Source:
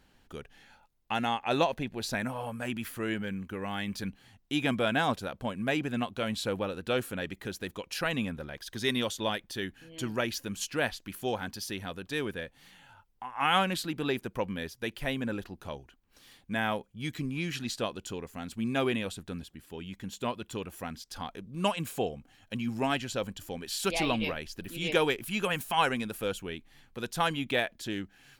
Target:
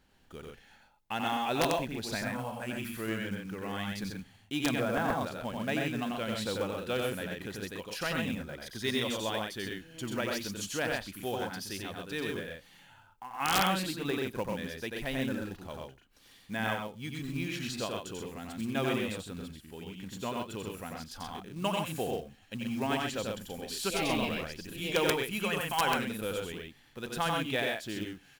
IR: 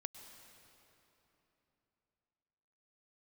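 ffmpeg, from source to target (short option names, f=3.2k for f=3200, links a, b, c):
-filter_complex "[0:a]aecho=1:1:90.38|128.3:0.708|0.631,aeval=exprs='(mod(4.47*val(0)+1,2)-1)/4.47':c=same,asettb=1/sr,asplit=3[a][b][c];[a]atrim=end=4.804[d];[b]atrim=start=4.8:end=5.21,asetpts=PTS-STARTPTS,afade=t=in:d=0.004:c=qsin,afade=t=out:st=0.406:d=0.004:c=qsin,lowpass=1.7k[e];[c]atrim=start=5.206[f];[d][e]acrossfade=d=0.004:c1=hsin:c2=qsin[g];[g][f]acrossfade=d=0.004:c1=qsin:c2=hsin[h];[1:a]atrim=start_sample=2205,atrim=end_sample=4410[i];[h][i]afir=irnorm=-1:irlink=0,asettb=1/sr,asplit=3[j][k][l];[j]atrim=end=16.744[m];[k]atrim=start=16.74:end=17.36,asetpts=PTS-STARTPTS,afade=t=in:d=0.004:c=qsin,afade=t=out:st=0.616:d=0.004:c=qsin,acompressor=threshold=-34dB:ratio=2.5[n];[l]atrim=start=17.356[o];[m][n]acrossfade=d=0.004:c1=hsin:c2=qsin[p];[p][o]acrossfade=d=0.004:c1=qsin:c2=hsin,acrusher=bits=5:mode=log:mix=0:aa=0.000001"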